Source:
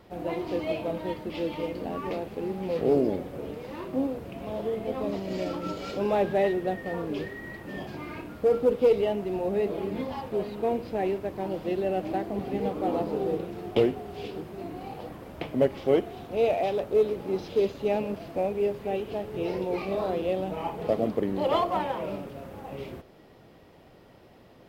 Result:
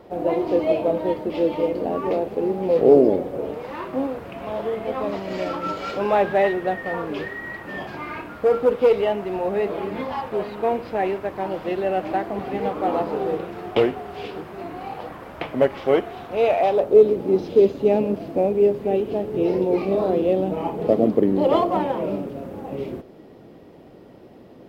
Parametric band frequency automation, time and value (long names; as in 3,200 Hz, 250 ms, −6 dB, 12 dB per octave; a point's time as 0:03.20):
parametric band +11 dB 2.4 octaves
0:03.35 510 Hz
0:03.76 1,300 Hz
0:16.58 1,300 Hz
0:17.02 300 Hz